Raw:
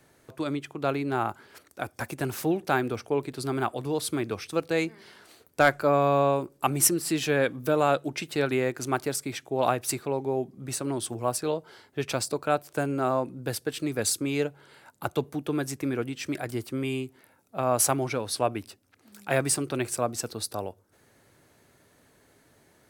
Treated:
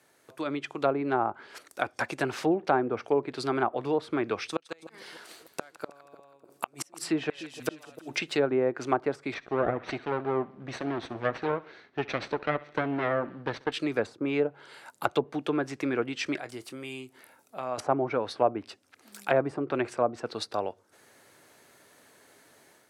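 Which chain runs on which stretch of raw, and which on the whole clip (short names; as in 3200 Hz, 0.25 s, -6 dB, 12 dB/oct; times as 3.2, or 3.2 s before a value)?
4.46–8.18 flipped gate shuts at -16 dBFS, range -37 dB + split-band echo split 850 Hz, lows 0.299 s, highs 0.162 s, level -15 dB
9.34–13.72 minimum comb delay 0.49 ms + air absorption 250 m + feedback echo 68 ms, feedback 52%, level -21.5 dB
16.38–17.78 compressor 1.5:1, threshold -53 dBFS + doubler 24 ms -13 dB
whole clip: HPF 490 Hz 6 dB/oct; treble ducked by the level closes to 870 Hz, closed at -26 dBFS; AGC gain up to 7 dB; gain -1.5 dB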